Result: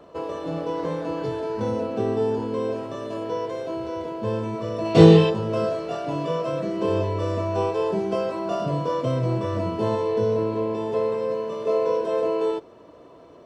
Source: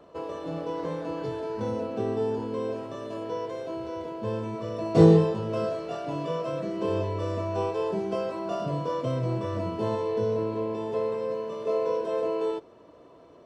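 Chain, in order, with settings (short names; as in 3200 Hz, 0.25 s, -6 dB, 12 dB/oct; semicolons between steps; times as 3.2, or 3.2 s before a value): 4.84–5.29 bell 3000 Hz +8 dB -> +14.5 dB 1.2 oct; gain +4.5 dB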